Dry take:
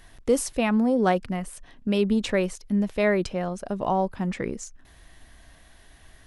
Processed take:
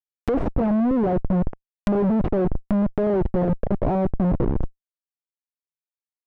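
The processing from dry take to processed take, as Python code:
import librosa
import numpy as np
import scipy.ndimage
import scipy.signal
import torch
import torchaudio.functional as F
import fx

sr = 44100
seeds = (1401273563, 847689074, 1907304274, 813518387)

y = fx.schmitt(x, sr, flips_db=-28.5)
y = fx.env_lowpass_down(y, sr, base_hz=700.0, full_db=-28.0)
y = y * librosa.db_to_amplitude(8.0)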